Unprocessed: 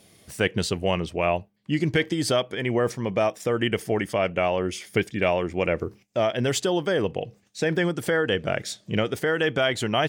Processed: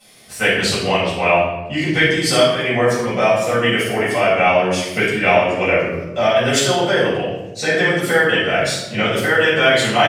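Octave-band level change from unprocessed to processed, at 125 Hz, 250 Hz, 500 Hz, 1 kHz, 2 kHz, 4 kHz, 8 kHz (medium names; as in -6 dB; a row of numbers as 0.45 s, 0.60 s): +5.0 dB, +5.0 dB, +8.0 dB, +11.0 dB, +12.0 dB, +10.5 dB, +10.0 dB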